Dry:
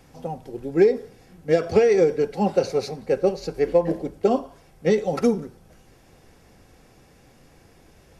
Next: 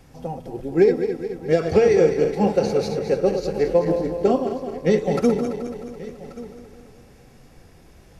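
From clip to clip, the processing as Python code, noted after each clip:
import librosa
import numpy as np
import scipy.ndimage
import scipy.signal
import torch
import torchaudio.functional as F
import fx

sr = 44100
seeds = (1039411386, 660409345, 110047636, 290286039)

y = fx.reverse_delay_fb(x, sr, ms=107, feedback_pct=74, wet_db=-8)
y = fx.low_shelf(y, sr, hz=140.0, db=6.0)
y = y + 10.0 ** (-18.0 / 20.0) * np.pad(y, (int(1133 * sr / 1000.0), 0))[:len(y)]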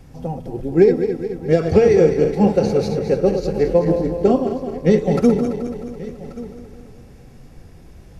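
y = fx.low_shelf(x, sr, hz=310.0, db=8.5)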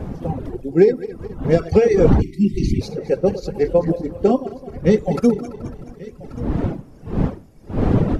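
y = fx.dmg_wind(x, sr, seeds[0], corner_hz=250.0, level_db=-22.0)
y = fx.dereverb_blind(y, sr, rt60_s=1.7)
y = fx.spec_erase(y, sr, start_s=2.21, length_s=0.61, low_hz=390.0, high_hz=1900.0)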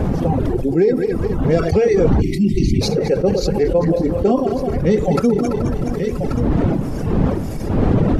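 y = fx.env_flatten(x, sr, amount_pct=70)
y = y * 10.0 ** (-4.0 / 20.0)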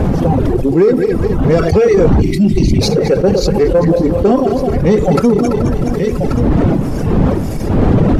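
y = fx.leveller(x, sr, passes=1)
y = y * 10.0 ** (2.0 / 20.0)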